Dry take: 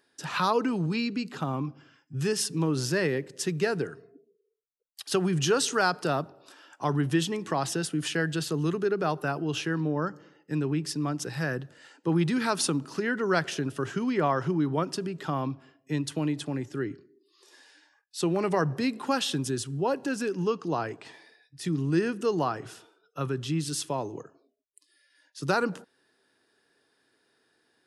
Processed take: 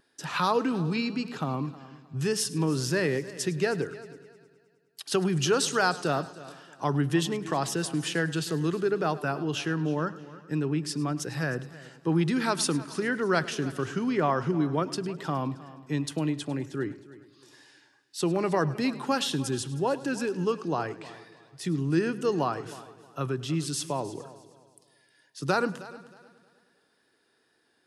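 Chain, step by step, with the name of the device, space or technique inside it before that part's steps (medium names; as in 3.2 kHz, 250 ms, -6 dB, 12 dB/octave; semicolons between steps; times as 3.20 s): multi-head tape echo (multi-head delay 104 ms, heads first and third, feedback 44%, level -18.5 dB; wow and flutter 22 cents)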